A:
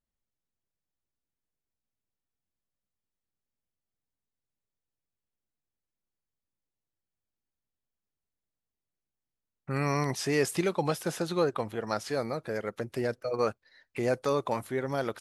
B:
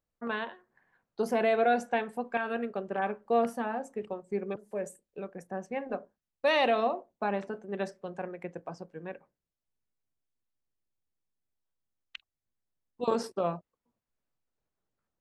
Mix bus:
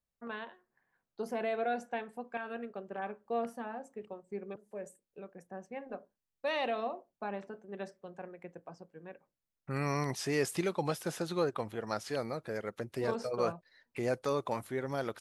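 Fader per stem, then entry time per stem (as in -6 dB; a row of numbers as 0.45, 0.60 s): -4.5, -8.0 dB; 0.00, 0.00 s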